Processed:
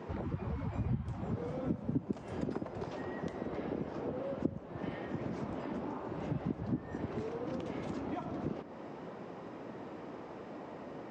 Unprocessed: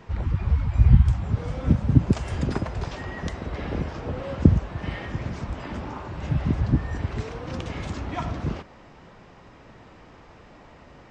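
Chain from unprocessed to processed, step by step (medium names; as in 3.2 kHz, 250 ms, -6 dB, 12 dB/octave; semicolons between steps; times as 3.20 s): high-pass 270 Hz 12 dB/octave; compression 4:1, threshold -44 dBFS, peak gain reduction 24.5 dB; tilt shelf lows +8.5 dB, about 860 Hz; on a send: reverberation, pre-delay 3 ms, DRR 17.5 dB; on the sum: trim +2.5 dB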